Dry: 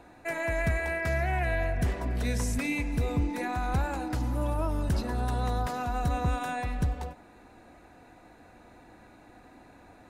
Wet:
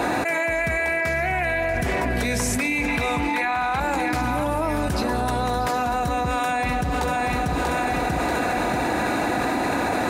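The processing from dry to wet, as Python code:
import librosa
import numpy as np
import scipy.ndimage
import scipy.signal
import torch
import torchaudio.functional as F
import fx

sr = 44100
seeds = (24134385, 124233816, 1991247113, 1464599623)

p1 = fx.dynamic_eq(x, sr, hz=2300.0, q=6.8, threshold_db=-53.0, ratio=4.0, max_db=6)
p2 = fx.highpass(p1, sr, hz=230.0, slope=6)
p3 = fx.band_shelf(p2, sr, hz=1700.0, db=10.5, octaves=2.8, at=(2.88, 3.8))
p4 = p3 + fx.echo_feedback(p3, sr, ms=638, feedback_pct=39, wet_db=-13.0, dry=0)
y = fx.env_flatten(p4, sr, amount_pct=100)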